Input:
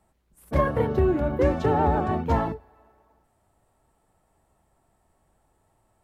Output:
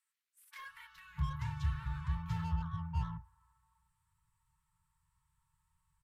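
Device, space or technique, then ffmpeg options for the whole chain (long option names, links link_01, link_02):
one-band saturation: -filter_complex "[0:a]afftfilt=real='re*(1-between(b*sr/4096,180,880))':imag='im*(1-between(b*sr/4096,180,880))':win_size=4096:overlap=0.75,acrossover=split=1500[link_01][link_02];[link_01]adelay=650[link_03];[link_03][link_02]amix=inputs=2:normalize=0,acrossover=split=450|2300[link_04][link_05][link_06];[link_05]asoftclip=type=tanh:threshold=-37.5dB[link_07];[link_04][link_07][link_06]amix=inputs=3:normalize=0,volume=-8.5dB"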